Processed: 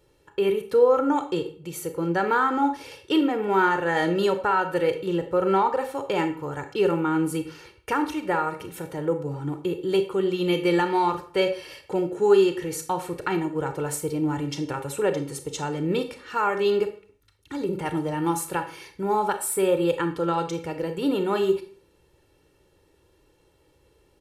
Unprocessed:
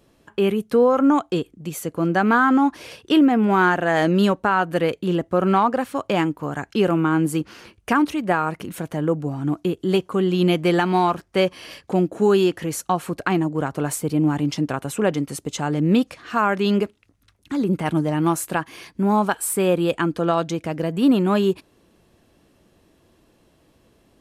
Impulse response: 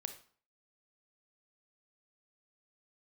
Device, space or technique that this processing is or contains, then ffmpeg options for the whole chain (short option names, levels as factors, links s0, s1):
microphone above a desk: -filter_complex "[0:a]asettb=1/sr,asplit=3[s0][s1][s2];[s0]atrim=end=12.164[s3];[s1]atrim=start=12.16:end=12.69,asetpts=PTS-STARTPTS,afade=t=in:d=0.004:c=qsin,afade=t=out:st=0.526:d=0.004:c=qsin,lowpass=f=12000:w=0.5412,lowpass=f=12000:w=1.3066[s4];[s2]atrim=start=12.686[s5];[s3][s4]acrossfade=d=0.004:c1=hsin:c2=qsin[s6];[s6][s5]acrossfade=d=0.004:c1=qsin:c2=hsin,aecho=1:1:2.2:0.75[s7];[1:a]atrim=start_sample=2205[s8];[s7][s8]afir=irnorm=-1:irlink=0,volume=0.708"